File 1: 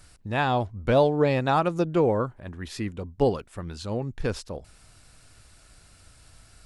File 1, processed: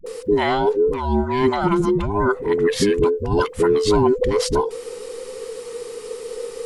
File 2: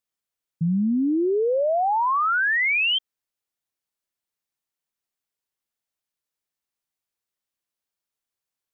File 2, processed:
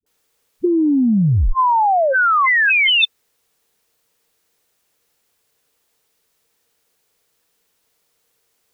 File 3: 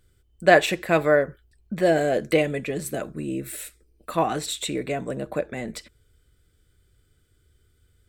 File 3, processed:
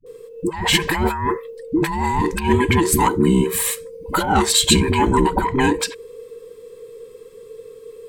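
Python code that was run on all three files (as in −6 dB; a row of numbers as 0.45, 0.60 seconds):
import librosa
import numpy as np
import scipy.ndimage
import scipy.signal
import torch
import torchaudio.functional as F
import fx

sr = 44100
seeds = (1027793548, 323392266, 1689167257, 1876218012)

y = fx.band_invert(x, sr, width_hz=500)
y = fx.peak_eq(y, sr, hz=460.0, db=11.0, octaves=0.28)
y = fx.over_compress(y, sr, threshold_db=-28.0, ratio=-1.0)
y = fx.dispersion(y, sr, late='highs', ms=64.0, hz=380.0)
y = y * 10.0 ** (-20 / 20.0) / np.sqrt(np.mean(np.square(y)))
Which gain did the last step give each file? +10.5, +13.5, +10.0 decibels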